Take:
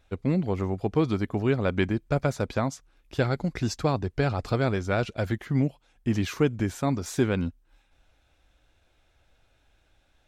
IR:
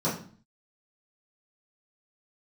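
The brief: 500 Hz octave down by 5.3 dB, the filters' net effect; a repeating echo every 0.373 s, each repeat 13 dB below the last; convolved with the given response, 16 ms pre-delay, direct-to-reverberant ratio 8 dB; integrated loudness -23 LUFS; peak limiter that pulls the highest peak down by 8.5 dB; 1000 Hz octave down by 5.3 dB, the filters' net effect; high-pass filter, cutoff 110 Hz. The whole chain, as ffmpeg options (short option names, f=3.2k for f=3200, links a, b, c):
-filter_complex "[0:a]highpass=110,equalizer=f=500:t=o:g=-5.5,equalizer=f=1k:t=o:g=-5.5,alimiter=limit=-21.5dB:level=0:latency=1,aecho=1:1:373|746|1119:0.224|0.0493|0.0108,asplit=2[a][b];[1:a]atrim=start_sample=2205,adelay=16[c];[b][c]afir=irnorm=-1:irlink=0,volume=-18.5dB[d];[a][d]amix=inputs=2:normalize=0,volume=7dB"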